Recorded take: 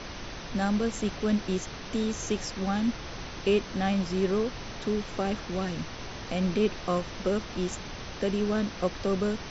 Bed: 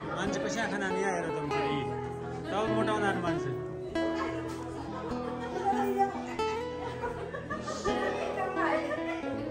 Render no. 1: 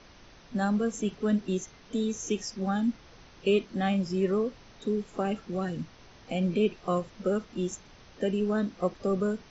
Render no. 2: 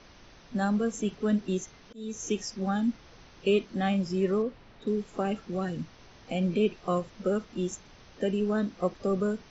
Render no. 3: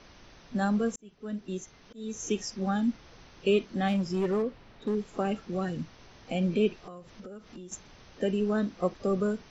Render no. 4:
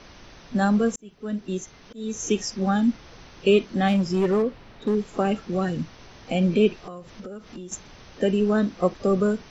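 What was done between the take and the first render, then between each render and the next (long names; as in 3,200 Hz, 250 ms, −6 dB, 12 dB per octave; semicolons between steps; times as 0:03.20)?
noise reduction from a noise print 14 dB
0:01.59–0:02.29: volume swells 306 ms; 0:04.42–0:04.87: high-frequency loss of the air 180 metres
0:00.96–0:02.07: fade in; 0:03.88–0:04.95: gain into a clipping stage and back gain 23.5 dB; 0:06.76–0:07.72: downward compressor 8 to 1, threshold −41 dBFS
level +6.5 dB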